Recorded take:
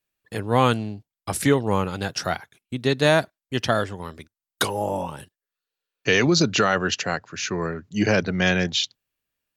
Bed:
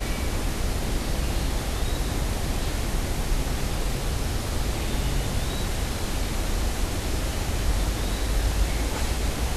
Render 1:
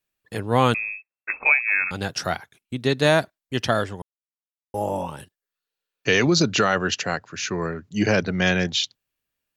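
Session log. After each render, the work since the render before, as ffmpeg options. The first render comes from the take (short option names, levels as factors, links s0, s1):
-filter_complex "[0:a]asettb=1/sr,asplit=3[s0][s1][s2];[s0]atrim=end=0.744[s3];[s1]atrim=start=0.74:end=1.91,asetpts=PTS-STARTPTS,afade=t=in:d=0.004:c=qsin,afade=t=out:st=1.166:d=0.004:c=qsin,lowpass=f=2300:t=q:w=0.5098,lowpass=f=2300:t=q:w=0.6013,lowpass=f=2300:t=q:w=0.9,lowpass=f=2300:t=q:w=2.563,afreqshift=-2700[s4];[s2]atrim=start=1.906[s5];[s3][s4]acrossfade=d=0.004:c1=hsin:c2=qsin[s6];[s6][s5]acrossfade=d=0.004:c1=qsin:c2=hsin,asplit=3[s7][s8][s9];[s7]atrim=end=4.02,asetpts=PTS-STARTPTS,afade=t=out:st=4.016:d=0.004:c=hsin[s10];[s8]atrim=start=4.02:end=4.74,asetpts=PTS-STARTPTS,volume=0[s11];[s9]atrim=start=4.74,asetpts=PTS-STARTPTS,afade=t=in:d=0.004:c=hsin[s12];[s10][s11][s12]concat=n=3:v=0:a=1"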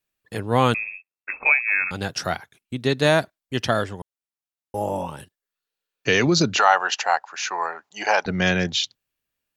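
-filter_complex "[0:a]asplit=3[s0][s1][s2];[s0]afade=t=out:st=0.83:d=0.02[s3];[s1]tremolo=f=89:d=0.75,afade=t=in:st=0.83:d=0.02,afade=t=out:st=1.31:d=0.02[s4];[s2]afade=t=in:st=1.31:d=0.02[s5];[s3][s4][s5]amix=inputs=3:normalize=0,asettb=1/sr,asplit=3[s6][s7][s8];[s6]atrim=end=6.574[s9];[s7]atrim=start=6.57:end=8.26,asetpts=PTS-STARTPTS,afade=t=in:d=0.004:c=qsin,afade=t=out:st=1.686:d=0.004:c=qsin,highpass=f=830:t=q:w=5.9[s10];[s8]atrim=start=8.256[s11];[s9][s10]acrossfade=d=0.004:c1=hsin:c2=qsin[s12];[s12][s11]acrossfade=d=0.004:c1=qsin:c2=hsin"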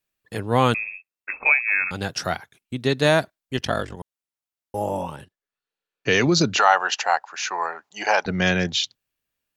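-filter_complex "[0:a]asettb=1/sr,asplit=3[s0][s1][s2];[s0]atrim=end=3.574[s3];[s1]atrim=start=3.57:end=3.97,asetpts=PTS-STARTPTS,afade=t=in:d=0.004:c=qsin,afade=t=out:st=0.396:d=0.004:c=qsin,aeval=exprs='val(0)*sin(2*PI*23*n/s)':c=same[s4];[s2]atrim=start=3.966[s5];[s3][s4]acrossfade=d=0.004:c1=hsin:c2=qsin[s6];[s6][s5]acrossfade=d=0.004:c1=qsin:c2=hsin,asettb=1/sr,asplit=3[s7][s8][s9];[s7]atrim=end=5.164[s10];[s8]atrim=start=5.16:end=6.11,asetpts=PTS-STARTPTS,afade=t=in:d=0.004:c=qsin,afade=t=out:st=0.946:d=0.004:c=qsin,lowpass=f=3100:p=1[s11];[s9]atrim=start=6.106[s12];[s10][s11]acrossfade=d=0.004:c1=hsin:c2=qsin[s13];[s13][s12]acrossfade=d=0.004:c1=qsin:c2=hsin"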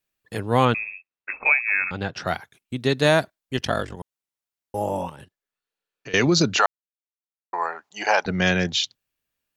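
-filter_complex "[0:a]asettb=1/sr,asplit=3[s0][s1][s2];[s0]atrim=end=0.654[s3];[s1]atrim=start=0.65:end=2.27,asetpts=PTS-STARTPTS,afade=t=in:d=0.004:c=qsin,afade=t=out:st=1.616:d=0.004:c=qsin,lowpass=3300[s4];[s2]atrim=start=2.266[s5];[s3][s4]acrossfade=d=0.004:c1=hsin:c2=qsin[s6];[s6][s5]acrossfade=d=0.004:c1=qsin:c2=hsin,asettb=1/sr,asplit=3[s7][s8][s9];[s7]atrim=end=5.094[s10];[s8]atrim=start=5.09:end=6.14,asetpts=PTS-STARTPTS,afade=t=in:d=0.004:c=qsin,afade=t=out:st=1.046:d=0.004:c=qsin,acompressor=threshold=0.0141:ratio=4:attack=3.2:release=140:knee=1:detection=peak[s11];[s9]atrim=start=6.136[s12];[s10][s11]acrossfade=d=0.004:c1=hsin:c2=qsin[s13];[s13][s12]acrossfade=d=0.004:c1=qsin:c2=hsin,asplit=3[s14][s15][s16];[s14]atrim=end=6.66,asetpts=PTS-STARTPTS,afade=t=out:st=6.656:d=0.004:c=hsin[s17];[s15]atrim=start=6.66:end=7.53,asetpts=PTS-STARTPTS,volume=0[s18];[s16]atrim=start=7.53,asetpts=PTS-STARTPTS,afade=t=in:d=0.004:c=hsin[s19];[s17][s18][s19]concat=n=3:v=0:a=1"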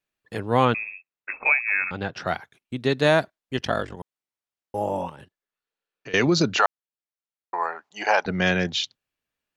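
-af "lowpass=f=3800:p=1,lowshelf=f=130:g=-5"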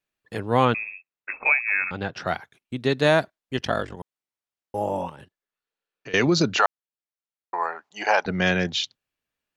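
-af anull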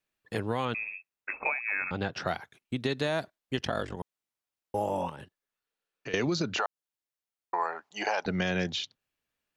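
-filter_complex "[0:a]alimiter=limit=0.224:level=0:latency=1:release=100,acrossover=split=1300|2600[s0][s1][s2];[s0]acompressor=threshold=0.0447:ratio=4[s3];[s1]acompressor=threshold=0.00891:ratio=4[s4];[s2]acompressor=threshold=0.0158:ratio=4[s5];[s3][s4][s5]amix=inputs=3:normalize=0"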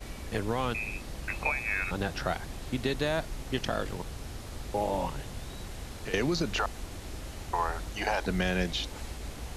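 -filter_complex "[1:a]volume=0.211[s0];[0:a][s0]amix=inputs=2:normalize=0"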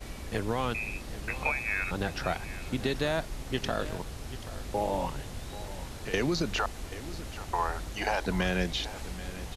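-af "aecho=1:1:784:0.178"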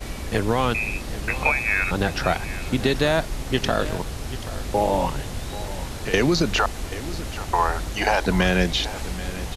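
-af "volume=2.82"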